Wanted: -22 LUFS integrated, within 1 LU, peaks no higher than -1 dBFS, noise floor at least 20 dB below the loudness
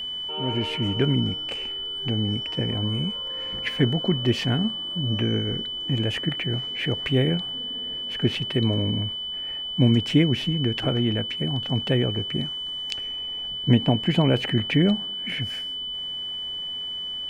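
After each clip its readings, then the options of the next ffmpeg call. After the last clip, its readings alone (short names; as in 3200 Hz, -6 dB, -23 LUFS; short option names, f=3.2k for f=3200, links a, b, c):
steady tone 3000 Hz; tone level -29 dBFS; loudness -24.5 LUFS; peak -5.5 dBFS; loudness target -22.0 LUFS
-> -af "bandreject=f=3k:w=30"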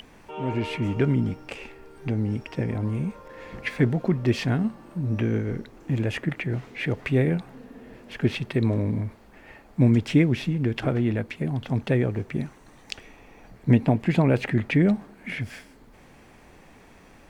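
steady tone none; loudness -25.5 LUFS; peak -5.5 dBFS; loudness target -22.0 LUFS
-> -af "volume=3.5dB"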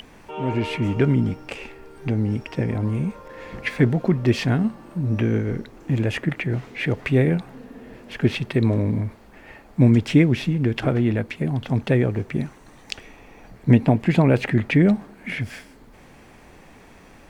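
loudness -22.0 LUFS; peak -2.0 dBFS; noise floor -48 dBFS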